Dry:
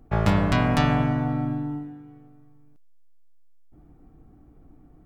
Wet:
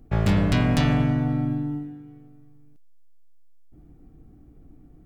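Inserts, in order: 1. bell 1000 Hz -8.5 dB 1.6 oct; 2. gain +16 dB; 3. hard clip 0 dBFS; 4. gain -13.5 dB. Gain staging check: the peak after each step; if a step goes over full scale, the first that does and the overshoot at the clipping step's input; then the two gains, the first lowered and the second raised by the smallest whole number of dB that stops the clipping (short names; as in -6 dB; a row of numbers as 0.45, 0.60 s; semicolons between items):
-7.5, +8.5, 0.0, -13.5 dBFS; step 2, 8.5 dB; step 2 +7 dB, step 4 -4.5 dB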